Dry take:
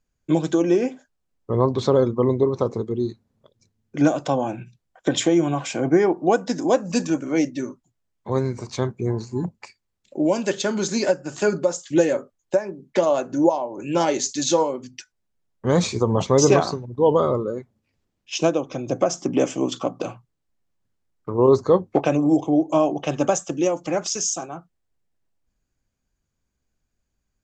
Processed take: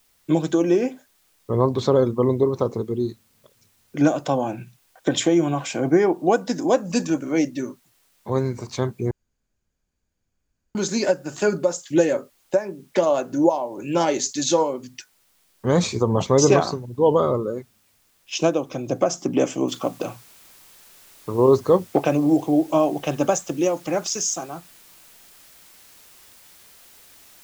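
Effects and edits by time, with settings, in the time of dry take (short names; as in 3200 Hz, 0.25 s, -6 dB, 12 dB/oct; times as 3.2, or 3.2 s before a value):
9.11–10.75 room tone
19.68 noise floor step -63 dB -50 dB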